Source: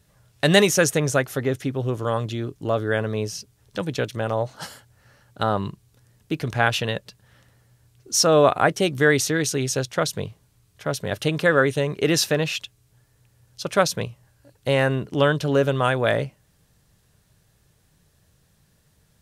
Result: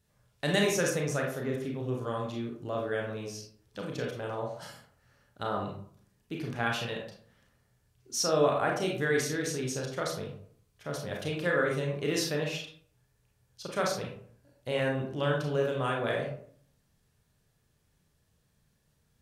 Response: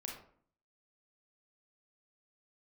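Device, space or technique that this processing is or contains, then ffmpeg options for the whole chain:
bathroom: -filter_complex "[1:a]atrim=start_sample=2205[a];[0:a][a]afir=irnorm=-1:irlink=0,volume=-7.5dB"

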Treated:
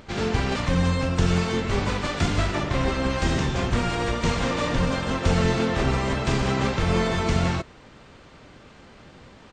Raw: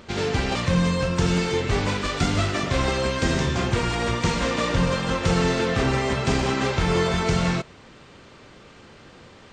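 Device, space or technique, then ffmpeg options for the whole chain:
octave pedal: -filter_complex "[0:a]asplit=2[a][b];[b]asetrate=22050,aresample=44100,atempo=2,volume=-1dB[c];[a][c]amix=inputs=2:normalize=0,asettb=1/sr,asplit=3[d][e][f];[d]atrim=end=2.554[g];[e]atrim=start=2.55:end=3.1,asetpts=PTS-STARTPTS,afade=t=in:d=0.004:c=qsin,afade=t=out:st=0.546:d=0.004:c=qsin,highshelf=f=4.7k:g=-6[h];[f]atrim=start=3.096[i];[g][h]acrossfade=d=0.004:c1=hsin:c2=qsin[j];[j][i]acrossfade=d=0.004:c1=qsin:c2=hsin,volume=-3dB"

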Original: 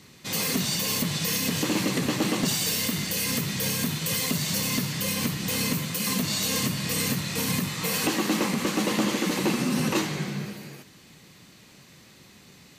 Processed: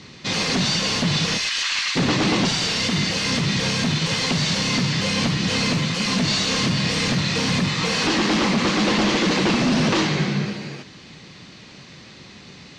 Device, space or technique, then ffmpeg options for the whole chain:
synthesiser wavefolder: -filter_complex "[0:a]highshelf=f=6.1k:g=5,asplit=3[a][b][c];[a]afade=t=out:st=1.37:d=0.02[d];[b]highpass=f=1.3k:w=0.5412,highpass=f=1.3k:w=1.3066,afade=t=in:st=1.37:d=0.02,afade=t=out:st=1.95:d=0.02[e];[c]afade=t=in:st=1.95:d=0.02[f];[d][e][f]amix=inputs=3:normalize=0,aeval=exprs='0.0794*(abs(mod(val(0)/0.0794+3,4)-2)-1)':c=same,lowpass=f=5.4k:w=0.5412,lowpass=f=5.4k:w=1.3066,volume=9dB"

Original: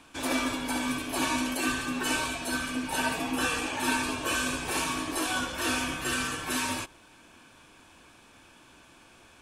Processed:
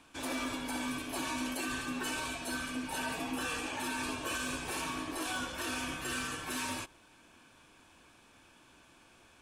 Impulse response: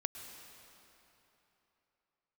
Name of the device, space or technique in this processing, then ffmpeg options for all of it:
limiter into clipper: -filter_complex "[0:a]asettb=1/sr,asplit=3[a][b][c];[a]atrim=end=4.814[d];[b]atrim=start=4.81:end=5.21,asetpts=PTS-STARTPTS,afade=t=in:d=0.004:c=qsin,afade=t=out:st=0.396:d=0.004:c=qsin,equalizer=f=8.7k:w=0.46:g=-4[e];[c]atrim=start=5.206[f];[d][e]acrossfade=d=0.004:c1=hsin:c2=qsin[g];[g][f]acrossfade=d=0.004:c1=qsin:c2=hsin,alimiter=limit=-21dB:level=0:latency=1:release=39,asoftclip=type=hard:threshold=-23.5dB,volume=-5.5dB"

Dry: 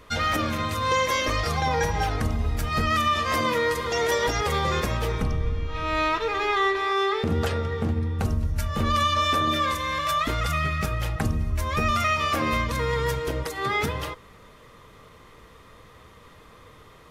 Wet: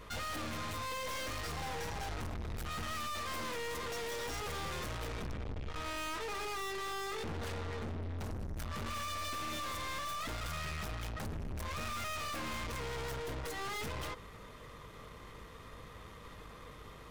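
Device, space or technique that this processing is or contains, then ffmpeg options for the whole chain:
valve amplifier with mains hum: -af "aeval=exprs='(tanh(89.1*val(0)+0.45)-tanh(0.45))/89.1':c=same,aeval=exprs='val(0)+0.00141*(sin(2*PI*50*n/s)+sin(2*PI*2*50*n/s)/2+sin(2*PI*3*50*n/s)/3+sin(2*PI*4*50*n/s)/4+sin(2*PI*5*50*n/s)/5)':c=same"

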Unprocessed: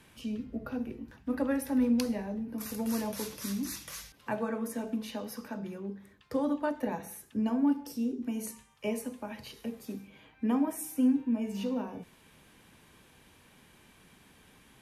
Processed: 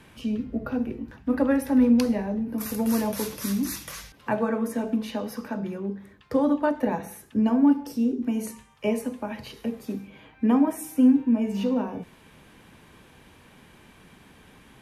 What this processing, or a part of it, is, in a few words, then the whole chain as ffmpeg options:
behind a face mask: -filter_complex "[0:a]asettb=1/sr,asplit=3[a][b][c];[a]atrim=end=2.464[d];[b]atrim=start=2.46:end=3.92,asetpts=PTS-STARTPTS,afade=t=in:d=0.004:c=qsin,afade=t=out:st=1.456:d=0.004:c=qsin,highshelf=f=10k:g=10[e];[c]atrim=start=3.916[f];[d][e]acrossfade=d=0.004:c1=hsin:c2=qsin[g];[g][f]acrossfade=d=0.004:c1=qsin:c2=hsin,highshelf=f=3.5k:g=-7.5,volume=8dB"

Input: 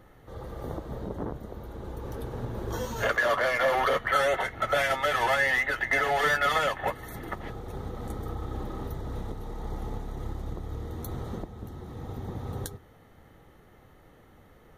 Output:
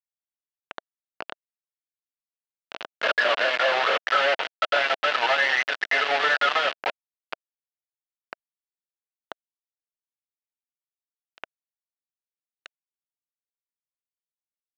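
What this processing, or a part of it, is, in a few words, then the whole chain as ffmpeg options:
hand-held game console: -af "acrusher=bits=3:mix=0:aa=0.000001,highpass=420,equalizer=f=650:t=q:w=4:g=4,equalizer=f=1.5k:t=q:w=4:g=5,equalizer=f=2.8k:t=q:w=4:g=6,lowpass=f=4.2k:w=0.5412,lowpass=f=4.2k:w=1.3066"

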